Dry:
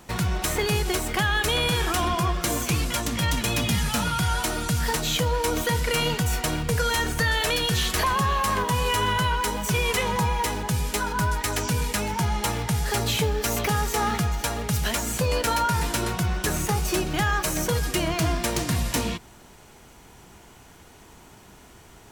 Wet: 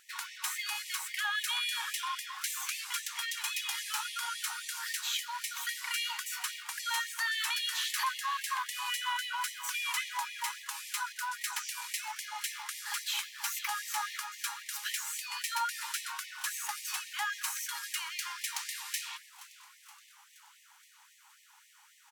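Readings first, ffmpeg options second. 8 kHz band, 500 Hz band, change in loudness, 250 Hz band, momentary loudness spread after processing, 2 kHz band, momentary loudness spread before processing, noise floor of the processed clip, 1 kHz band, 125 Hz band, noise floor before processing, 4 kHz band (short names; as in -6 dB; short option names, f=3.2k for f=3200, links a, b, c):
-7.0 dB, under -40 dB, -10.0 dB, under -40 dB, 6 LU, -7.5 dB, 3 LU, -61 dBFS, -11.5 dB, under -40 dB, -50 dBFS, -7.0 dB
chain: -filter_complex "[0:a]asplit=6[a][b][c][d][e][f];[b]adelay=473,afreqshift=130,volume=-18dB[g];[c]adelay=946,afreqshift=260,volume=-22.6dB[h];[d]adelay=1419,afreqshift=390,volume=-27.2dB[i];[e]adelay=1892,afreqshift=520,volume=-31.7dB[j];[f]adelay=2365,afreqshift=650,volume=-36.3dB[k];[a][g][h][i][j][k]amix=inputs=6:normalize=0,afftfilt=real='re*gte(b*sr/1024,750*pow(1800/750,0.5+0.5*sin(2*PI*3.7*pts/sr)))':imag='im*gte(b*sr/1024,750*pow(1800/750,0.5+0.5*sin(2*PI*3.7*pts/sr)))':win_size=1024:overlap=0.75,volume=-7dB"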